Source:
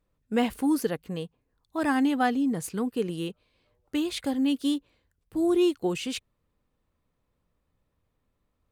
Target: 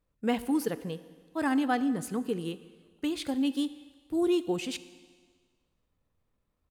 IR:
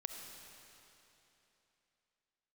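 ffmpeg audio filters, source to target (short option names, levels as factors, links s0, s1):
-filter_complex "[0:a]atempo=1.3,asplit=2[s0][s1];[1:a]atrim=start_sample=2205,asetrate=88200,aresample=44100[s2];[s1][s2]afir=irnorm=-1:irlink=0,volume=1.06[s3];[s0][s3]amix=inputs=2:normalize=0,volume=0.531"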